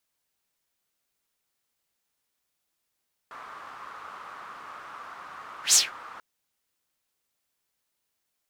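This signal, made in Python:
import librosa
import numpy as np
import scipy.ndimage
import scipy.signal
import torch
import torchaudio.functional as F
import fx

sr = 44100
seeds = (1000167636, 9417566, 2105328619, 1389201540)

y = fx.whoosh(sr, seeds[0], length_s=2.89, peak_s=2.43, rise_s=0.12, fall_s=0.19, ends_hz=1200.0, peak_hz=7200.0, q=4.2, swell_db=26.5)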